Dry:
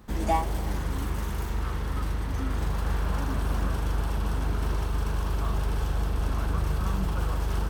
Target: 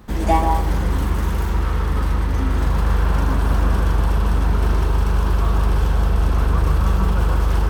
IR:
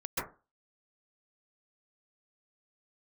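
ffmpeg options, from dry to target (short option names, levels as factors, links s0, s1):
-filter_complex "[0:a]asplit=2[s0][s1];[1:a]atrim=start_sample=2205,lowpass=5700[s2];[s1][s2]afir=irnorm=-1:irlink=0,volume=0.422[s3];[s0][s3]amix=inputs=2:normalize=0,volume=1.78"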